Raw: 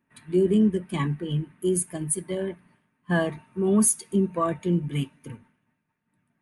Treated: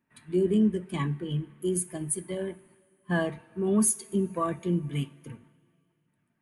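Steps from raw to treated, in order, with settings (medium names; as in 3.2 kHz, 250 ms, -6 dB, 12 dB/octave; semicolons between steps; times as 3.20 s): two-slope reverb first 0.41 s, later 2.6 s, from -15 dB, DRR 16.5 dB; trim -3.5 dB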